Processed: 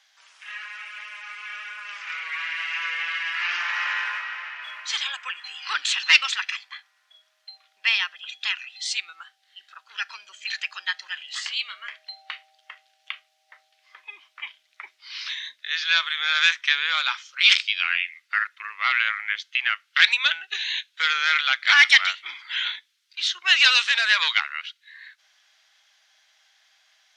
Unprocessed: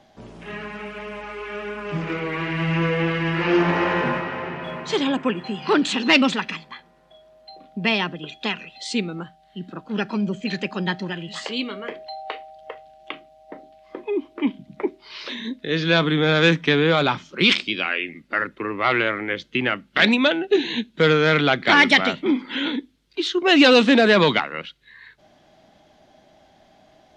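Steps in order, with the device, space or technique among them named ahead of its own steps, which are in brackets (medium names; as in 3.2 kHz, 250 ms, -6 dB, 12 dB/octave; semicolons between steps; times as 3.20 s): headphones lying on a table (high-pass 1.4 kHz 24 dB/octave; peaking EQ 5.8 kHz +4 dB 0.57 oct); trim +1.5 dB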